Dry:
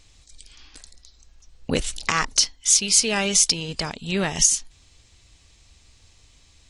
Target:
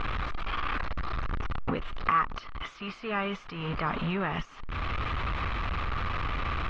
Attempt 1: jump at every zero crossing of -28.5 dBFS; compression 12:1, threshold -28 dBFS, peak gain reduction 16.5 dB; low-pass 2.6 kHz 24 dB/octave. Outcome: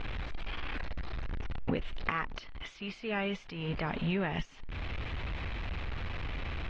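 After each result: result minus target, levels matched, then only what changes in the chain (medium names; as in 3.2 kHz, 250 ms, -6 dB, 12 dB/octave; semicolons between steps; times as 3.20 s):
1 kHz band -5.5 dB; jump at every zero crossing: distortion -5 dB
add after low-pass: peaking EQ 1.2 kHz +13 dB 0.48 oct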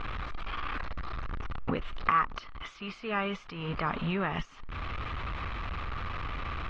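jump at every zero crossing: distortion -5 dB
change: jump at every zero crossing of -22 dBFS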